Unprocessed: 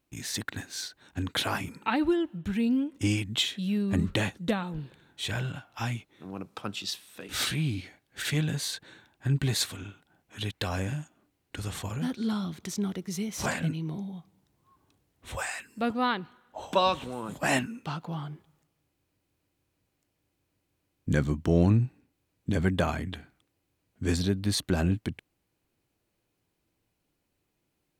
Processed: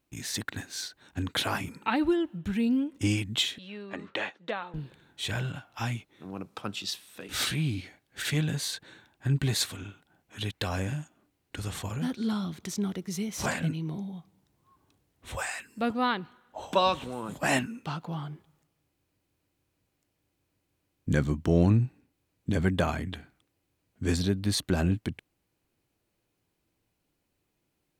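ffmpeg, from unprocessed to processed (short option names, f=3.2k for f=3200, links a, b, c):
-filter_complex "[0:a]asettb=1/sr,asplit=3[a][b][c];[a]atrim=end=3.584[d];[b]atrim=start=3.58:end=4.74,asetpts=PTS-STARTPTS,afade=t=in:d=0.004:c=qsin,afade=t=out:st=1.156:d=0.004:c=qsin,highpass=530,lowpass=3.2k[e];[c]atrim=start=4.736[f];[d][e]acrossfade=d=0.004:c1=hsin:c2=qsin[g];[g][f]acrossfade=d=0.004:c1=qsin:c2=hsin"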